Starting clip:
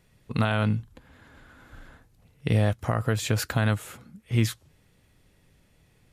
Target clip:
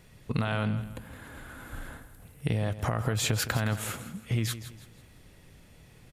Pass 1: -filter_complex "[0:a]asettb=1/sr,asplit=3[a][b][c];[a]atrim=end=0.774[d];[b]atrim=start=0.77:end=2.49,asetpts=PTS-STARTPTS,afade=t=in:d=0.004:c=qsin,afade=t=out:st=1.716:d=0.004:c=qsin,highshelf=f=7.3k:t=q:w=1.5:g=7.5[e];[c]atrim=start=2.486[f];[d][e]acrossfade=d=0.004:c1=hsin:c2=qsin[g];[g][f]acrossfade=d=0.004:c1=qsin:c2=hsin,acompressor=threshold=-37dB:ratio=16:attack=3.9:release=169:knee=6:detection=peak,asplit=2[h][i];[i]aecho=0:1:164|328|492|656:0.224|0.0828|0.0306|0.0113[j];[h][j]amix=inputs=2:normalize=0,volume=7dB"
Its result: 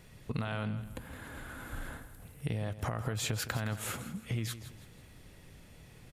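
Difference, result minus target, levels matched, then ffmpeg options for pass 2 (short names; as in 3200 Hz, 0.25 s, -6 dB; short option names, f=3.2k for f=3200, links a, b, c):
compressor: peak gain reduction +6.5 dB
-filter_complex "[0:a]asettb=1/sr,asplit=3[a][b][c];[a]atrim=end=0.774[d];[b]atrim=start=0.77:end=2.49,asetpts=PTS-STARTPTS,afade=t=in:d=0.004:c=qsin,afade=t=out:st=1.716:d=0.004:c=qsin,highshelf=f=7.3k:t=q:w=1.5:g=7.5[e];[c]atrim=start=2.486[f];[d][e]acrossfade=d=0.004:c1=hsin:c2=qsin[g];[g][f]acrossfade=d=0.004:c1=qsin:c2=hsin,acompressor=threshold=-30dB:ratio=16:attack=3.9:release=169:knee=6:detection=peak,asplit=2[h][i];[i]aecho=0:1:164|328|492|656:0.224|0.0828|0.0306|0.0113[j];[h][j]amix=inputs=2:normalize=0,volume=7dB"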